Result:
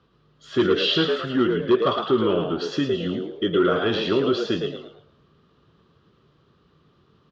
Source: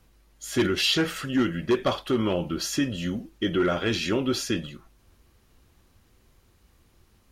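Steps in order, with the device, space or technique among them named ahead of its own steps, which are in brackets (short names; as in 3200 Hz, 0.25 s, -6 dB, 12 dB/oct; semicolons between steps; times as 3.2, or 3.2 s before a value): frequency-shifting delay pedal into a guitar cabinet (frequency-shifting echo 0.11 s, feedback 33%, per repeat +100 Hz, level -5.5 dB; speaker cabinet 98–4200 Hz, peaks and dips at 150 Hz +4 dB, 410 Hz +8 dB, 800 Hz -4 dB, 1200 Hz +9 dB, 2200 Hz -9 dB, 3300 Hz +4 dB)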